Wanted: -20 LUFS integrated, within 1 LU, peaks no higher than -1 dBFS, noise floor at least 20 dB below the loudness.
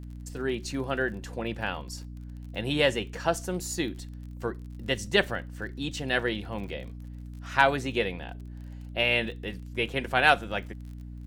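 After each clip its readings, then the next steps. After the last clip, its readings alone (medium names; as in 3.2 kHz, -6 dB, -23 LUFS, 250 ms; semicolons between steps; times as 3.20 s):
tick rate 33 per s; hum 60 Hz; highest harmonic 300 Hz; hum level -38 dBFS; loudness -28.5 LUFS; peak level -5.0 dBFS; loudness target -20.0 LUFS
-> de-click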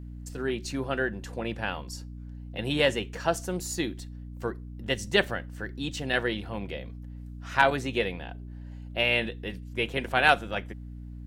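tick rate 0 per s; hum 60 Hz; highest harmonic 300 Hz; hum level -38 dBFS
-> de-hum 60 Hz, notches 5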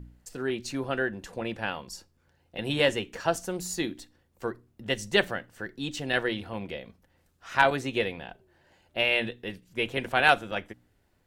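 hum not found; loudness -29.0 LUFS; peak level -5.0 dBFS; loudness target -20.0 LUFS
-> trim +9 dB; peak limiter -1 dBFS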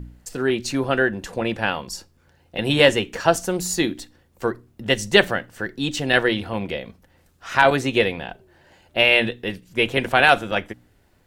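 loudness -20.5 LUFS; peak level -1.0 dBFS; noise floor -60 dBFS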